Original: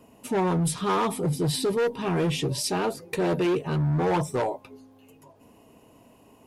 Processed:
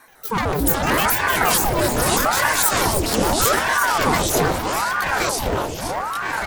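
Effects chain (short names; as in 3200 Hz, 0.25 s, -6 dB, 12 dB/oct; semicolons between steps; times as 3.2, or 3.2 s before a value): trilling pitch shifter +10 st, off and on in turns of 75 ms; high shelf 5800 Hz +11 dB; feedback echo 0.308 s, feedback 48%, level -8 dB; echoes that change speed 0.291 s, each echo -3 st, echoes 3; ring modulator with a swept carrier 720 Hz, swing 85%, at 0.8 Hz; gain +6 dB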